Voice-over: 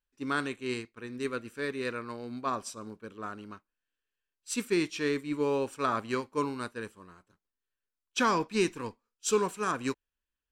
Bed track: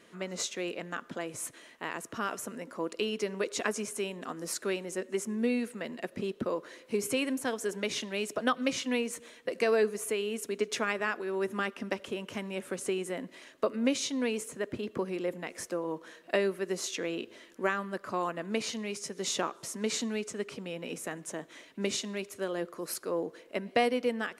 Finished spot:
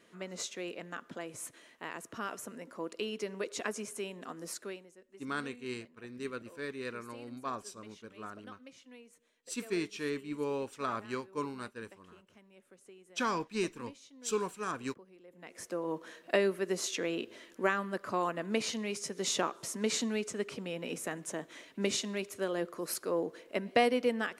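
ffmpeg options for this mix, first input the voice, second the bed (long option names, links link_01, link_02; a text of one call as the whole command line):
ffmpeg -i stem1.wav -i stem2.wav -filter_complex "[0:a]adelay=5000,volume=-6dB[link_01];[1:a]volume=18.5dB,afade=type=out:start_time=4.45:duration=0.48:silence=0.11885,afade=type=in:start_time=15.3:duration=0.65:silence=0.0668344[link_02];[link_01][link_02]amix=inputs=2:normalize=0" out.wav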